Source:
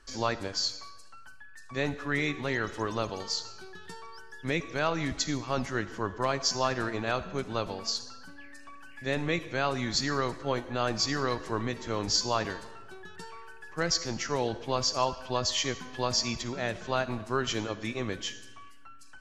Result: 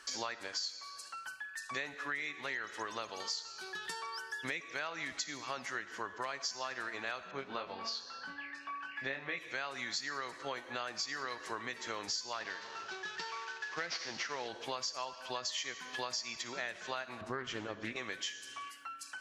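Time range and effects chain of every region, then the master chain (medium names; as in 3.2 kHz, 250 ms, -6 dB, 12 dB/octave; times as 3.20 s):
7.31–9.38 s: distance through air 220 m + doubling 22 ms -4 dB
12.33–14.48 s: CVSD coder 32 kbps + high-pass 60 Hz
17.21–17.96 s: tilt EQ -3.5 dB/octave + loudspeaker Doppler distortion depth 0.26 ms
whole clip: high-pass 1.2 kHz 6 dB/octave; dynamic bell 1.9 kHz, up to +5 dB, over -49 dBFS, Q 2; compression 6:1, threshold -47 dBFS; trim +9.5 dB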